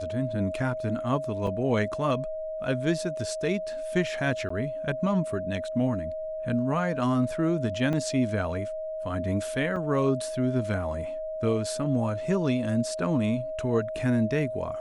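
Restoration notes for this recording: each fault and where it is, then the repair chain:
tone 630 Hz -31 dBFS
1.47 gap 3.6 ms
4.49–4.5 gap 14 ms
7.93 gap 3.2 ms
9.76 gap 4.4 ms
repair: notch 630 Hz, Q 30; interpolate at 1.47, 3.6 ms; interpolate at 4.49, 14 ms; interpolate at 7.93, 3.2 ms; interpolate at 9.76, 4.4 ms

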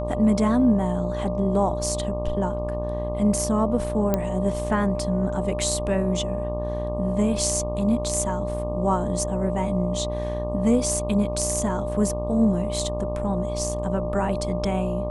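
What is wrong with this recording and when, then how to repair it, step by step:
buzz 60 Hz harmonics 20 -30 dBFS
tone 600 Hz -29 dBFS
4.14 pop -9 dBFS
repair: de-click; de-hum 60 Hz, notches 20; notch 600 Hz, Q 30

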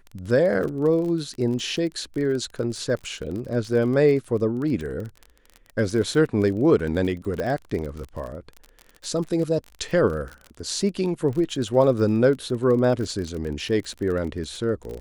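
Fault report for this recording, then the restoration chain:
crackle 30/s -30 dBFS
7.4 pop -16 dBFS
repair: de-click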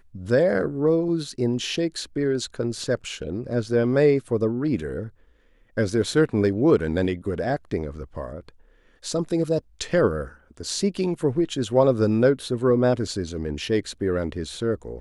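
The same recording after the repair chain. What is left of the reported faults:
7.4 pop

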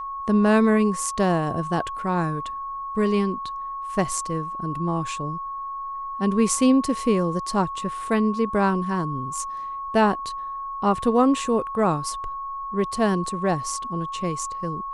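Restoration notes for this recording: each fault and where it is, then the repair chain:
tone 1100 Hz -29 dBFS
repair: notch 1100 Hz, Q 30

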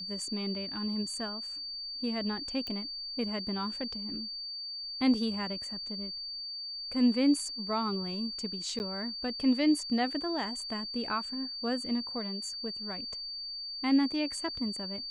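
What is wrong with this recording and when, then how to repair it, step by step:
tone 4600 Hz -37 dBFS
2.67 pop -24 dBFS
8.79–8.8 gap 9.9 ms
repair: de-click; notch 4600 Hz, Q 30; interpolate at 8.79, 9.9 ms

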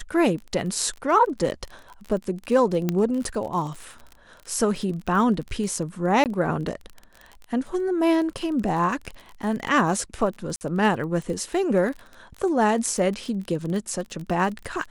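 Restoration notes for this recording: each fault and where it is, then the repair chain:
crackle 31/s -31 dBFS
2.89 pop -10 dBFS
6.24–6.26 gap 18 ms
10.56–10.61 gap 49 ms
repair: de-click; interpolate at 6.24, 18 ms; interpolate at 10.56, 49 ms

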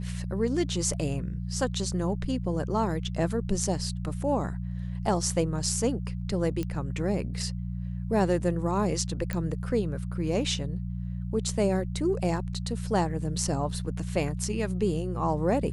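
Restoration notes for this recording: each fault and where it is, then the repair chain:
hum 60 Hz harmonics 3 -33 dBFS
6.63 pop -19 dBFS
9.33 pop -17 dBFS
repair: de-click; de-hum 60 Hz, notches 3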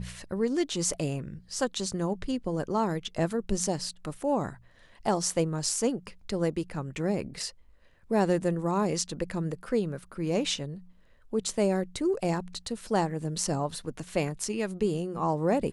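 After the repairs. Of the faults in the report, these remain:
none

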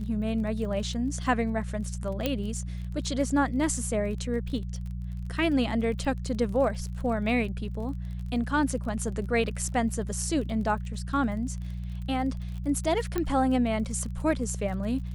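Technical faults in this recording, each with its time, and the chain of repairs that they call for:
crackle 29/s -37 dBFS
hum 60 Hz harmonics 3 -34 dBFS
2.26 pop -12 dBFS
13.18 pop -15 dBFS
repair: de-click; de-hum 60 Hz, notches 3

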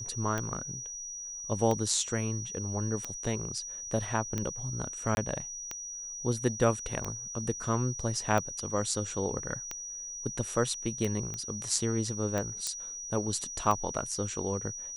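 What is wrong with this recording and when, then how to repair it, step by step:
tick 45 rpm -18 dBFS
tone 5800 Hz -38 dBFS
5.15–5.17 gap 21 ms
11.34 pop -23 dBFS
12.67 pop -17 dBFS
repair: de-click; notch 5800 Hz, Q 30; interpolate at 5.15, 21 ms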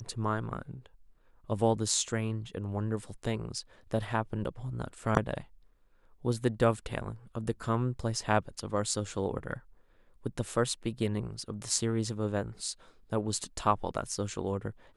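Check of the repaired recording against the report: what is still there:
none

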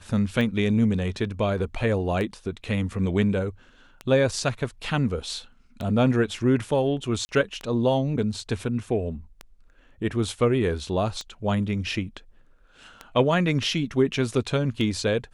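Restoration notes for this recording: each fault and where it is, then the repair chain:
tick 33 1/3 rpm -19 dBFS
7.25–7.29 gap 40 ms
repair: de-click; interpolate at 7.25, 40 ms

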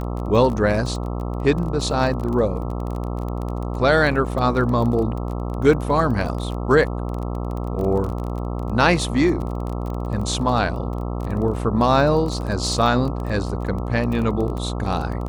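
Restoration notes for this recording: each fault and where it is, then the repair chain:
buzz 60 Hz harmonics 22 -26 dBFS
crackle 24/s -27 dBFS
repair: de-click; de-hum 60 Hz, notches 22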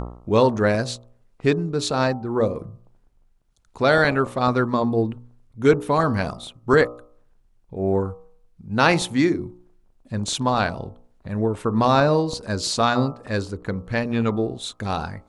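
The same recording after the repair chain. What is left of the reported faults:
none

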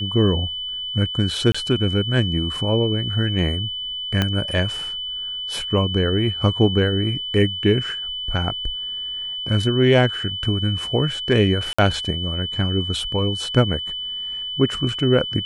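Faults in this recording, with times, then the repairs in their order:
tone 3000 Hz -26 dBFS
1.52–1.54 gap 25 ms
4.22 pop -6 dBFS
11.73–11.79 gap 55 ms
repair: de-click; notch 3000 Hz, Q 30; interpolate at 1.52, 25 ms; interpolate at 11.73, 55 ms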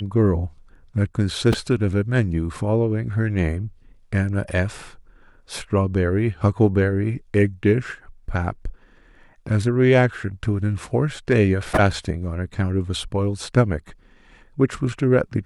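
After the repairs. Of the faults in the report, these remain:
4.22 pop

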